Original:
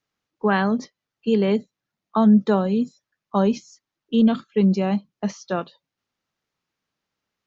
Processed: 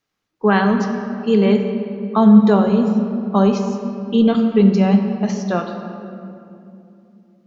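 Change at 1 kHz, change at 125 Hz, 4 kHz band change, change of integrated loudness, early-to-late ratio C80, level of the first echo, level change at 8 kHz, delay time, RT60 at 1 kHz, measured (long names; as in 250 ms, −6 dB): +5.0 dB, +6.5 dB, +4.5 dB, +5.5 dB, 6.5 dB, no echo audible, can't be measured, no echo audible, 2.5 s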